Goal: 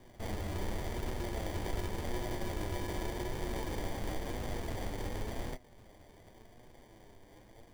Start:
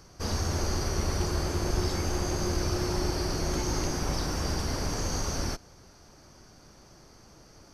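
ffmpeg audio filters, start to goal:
-filter_complex "[0:a]lowpass=f=2600:w=0.5412,lowpass=f=2600:w=1.3066,equalizer=f=150:w=0.34:g=-9,asplit=2[s0][s1];[s1]acompressor=threshold=0.00562:ratio=6,volume=1.12[s2];[s0][s2]amix=inputs=2:normalize=0,acrusher=samples=33:mix=1:aa=0.000001,flanger=delay=7.9:depth=2.5:regen=56:speed=0.9:shape=triangular"

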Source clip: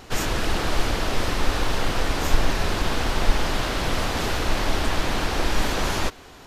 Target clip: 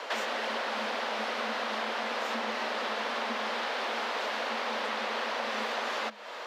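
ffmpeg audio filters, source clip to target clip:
-filter_complex "[0:a]acrossover=split=210 4500:gain=0.0891 1 0.141[s0][s1][s2];[s0][s1][s2]amix=inputs=3:normalize=0,afreqshift=210,acompressor=threshold=0.0112:ratio=5,volume=2.37"

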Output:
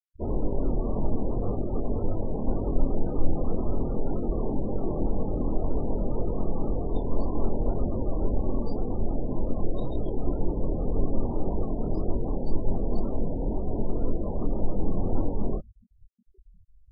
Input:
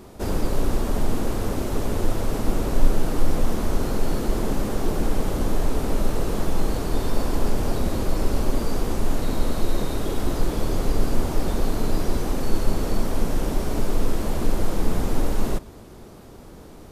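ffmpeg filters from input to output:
-af "afftfilt=real='re*gte(hypot(re,im),0.0631)':imag='im*gte(hypot(re,im),0.0631)':win_size=1024:overlap=0.75,flanger=delay=20:depth=5.4:speed=1.9" -ar 32000 -c:a aac -b:a 24k

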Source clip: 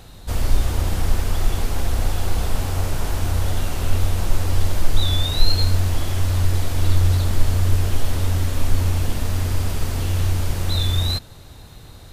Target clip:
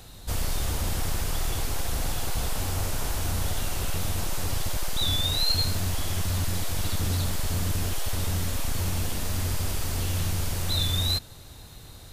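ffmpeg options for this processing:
-filter_complex "[0:a]highshelf=f=3800:g=7,acrossover=split=430[s0][s1];[s0]asoftclip=type=hard:threshold=0.106[s2];[s2][s1]amix=inputs=2:normalize=0,volume=0.596"

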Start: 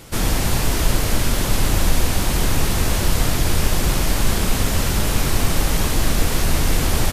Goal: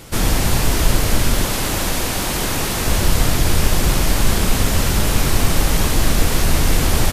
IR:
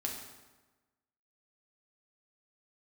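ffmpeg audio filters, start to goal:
-filter_complex "[0:a]asettb=1/sr,asplit=3[s0][s1][s2];[s0]atrim=end=1.464[s3];[s1]atrim=start=1.46:end=2.87,asetpts=PTS-STARTPTS,afade=t=in:d=0.004:c=qsin,afade=t=out:st=1.406:d=0.004:c=qsin,lowshelf=f=140:g=-10.5[s4];[s2]atrim=start=2.866[s5];[s3][s4]acrossfade=d=0.004:c1=hsin:c2=qsin[s6];[s6][s5]acrossfade=d=0.004:c1=qsin:c2=hsin,volume=1.33"

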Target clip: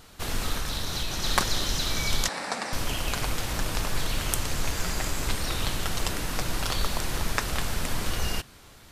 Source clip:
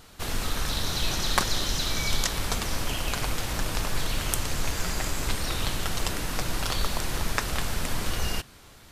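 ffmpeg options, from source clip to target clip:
-filter_complex "[0:a]asettb=1/sr,asplit=3[s0][s1][s2];[s0]atrim=end=0.544[s3];[s1]atrim=start=0.54:end=1.24,asetpts=PTS-STARTPTS,afade=t=in:d=0.004:c=qsin,afade=t=out:st=0.696:d=0.004:c=qsin,acompressor=threshold=0.0562:ratio=6[s4];[s2]atrim=start=1.236[s5];[s3][s4]acrossfade=d=0.004:c1=hsin:c2=qsin[s6];[s6][s5]acrossfade=d=0.004:c1=qsin:c2=hsin,asettb=1/sr,asplit=3[s7][s8][s9];[s7]atrim=end=2.284[s10];[s8]atrim=start=2.28:end=2.73,asetpts=PTS-STARTPTS,afade=t=in:d=0.004:c=qsin,afade=t=out:st=0.446:d=0.004:c=qsin,highpass=f=210:w=0.5412,highpass=f=210:w=1.3066,equalizer=f=380:t=q:w=4:g=-8,equalizer=f=560:t=q:w=4:g=4,equalizer=f=800:t=q:w=4:g=6,equalizer=f=1800:t=q:w=4:g=5,equalizer=f=3200:t=q:w=4:g=-10,equalizer=f=6500:t=q:w=4:g=-8,lowpass=f=8600:w=0.5412,lowpass=f=8600:w=1.3066[s11];[s9]atrim=start=2.726[s12];[s10][s11]acrossfade=d=0.004:c1=hsin:c2=qsin[s13];[s13][s12]acrossfade=d=0.004:c1=qsin:c2=hsin"

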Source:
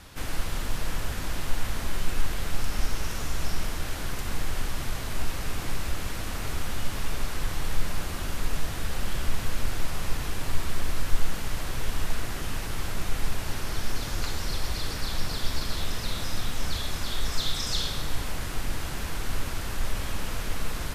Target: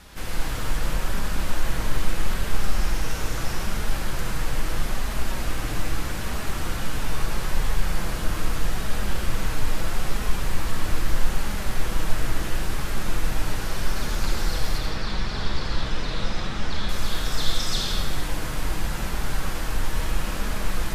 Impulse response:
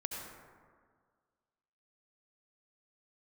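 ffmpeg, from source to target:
-filter_complex "[0:a]asettb=1/sr,asplit=3[s0][s1][s2];[s0]atrim=end=14.784[s3];[s1]atrim=start=14.78:end=16.89,asetpts=PTS-STARTPTS,afade=t=in:d=0.004:c=qsin,afade=t=out:st=2.106:d=0.004:c=qsin,lowpass=4800[s4];[s2]atrim=start=16.886[s5];[s3][s4]acrossfade=d=0.004:c1=hsin:c2=qsin[s6];[s6][s5]acrossfade=d=0.004:c1=qsin:c2=hsin[s7];[1:a]atrim=start_sample=2205[s8];[s7][s8]afir=irnorm=-1:irlink=0,flanger=delay=4.7:depth=2.1:regen=-49:speed=0.78:shape=triangular,volume=2.24"

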